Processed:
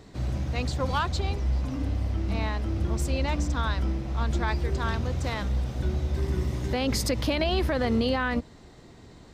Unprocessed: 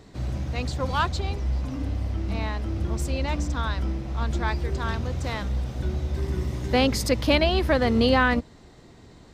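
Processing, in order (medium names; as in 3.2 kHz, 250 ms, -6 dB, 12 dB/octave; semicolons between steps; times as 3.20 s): peak limiter -16 dBFS, peak gain reduction 9.5 dB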